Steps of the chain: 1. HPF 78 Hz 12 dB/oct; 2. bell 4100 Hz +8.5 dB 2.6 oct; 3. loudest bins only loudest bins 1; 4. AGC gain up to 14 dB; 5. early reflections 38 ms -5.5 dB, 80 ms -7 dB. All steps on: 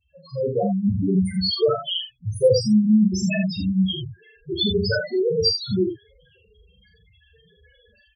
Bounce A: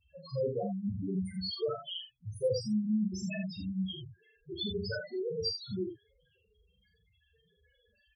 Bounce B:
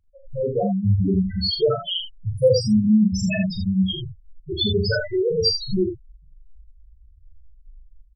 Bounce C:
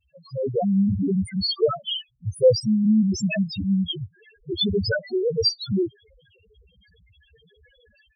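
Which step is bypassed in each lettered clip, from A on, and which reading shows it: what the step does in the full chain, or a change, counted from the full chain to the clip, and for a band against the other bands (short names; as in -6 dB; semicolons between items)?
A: 4, momentary loudness spread change -2 LU; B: 1, 125 Hz band +2.5 dB; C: 5, echo-to-direct -3.0 dB to none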